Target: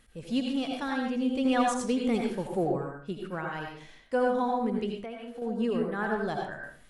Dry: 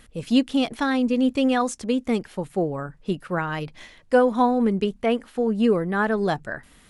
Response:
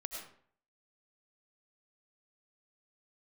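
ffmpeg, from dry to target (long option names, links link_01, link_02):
-filter_complex "[0:a]asettb=1/sr,asplit=3[link_01][link_02][link_03];[link_01]atrim=end=1.454[link_04];[link_02]atrim=start=1.45:end=2.78,asetpts=PTS-STARTPTS,afade=type=in:duration=0.004:curve=qsin,afade=type=out:start_time=1.326:duration=0.004:curve=qsin,acontrast=34[link_05];[link_03]atrim=start=2.776[link_06];[link_04][link_05]acrossfade=duration=0.004:curve1=hsin:curve2=qsin[link_07];[link_07][link_06]acrossfade=duration=0.004:curve1=qsin:curve2=hsin[link_08];[1:a]atrim=start_sample=2205,asetrate=52920,aresample=44100[link_09];[link_08][link_09]afir=irnorm=-1:irlink=0,asettb=1/sr,asplit=3[link_10][link_11][link_12];[link_10]atrim=end=4.984[link_13];[link_11]atrim=start=4.98:end=5.42,asetpts=PTS-STARTPTS,afade=type=in:duration=0.004:curve=qsin,afade=type=out:start_time=0.436:duration=0.004:curve=qsin,acompressor=threshold=-32dB:ratio=6[link_14];[link_12]atrim=start=5.416[link_15];[link_13][link_14]acrossfade=duration=0.004:curve1=hsin:curve2=qsin[link_16];[link_16][link_15]acrossfade=duration=0.004:curve1=qsin:curve2=hsin,volume=-5dB"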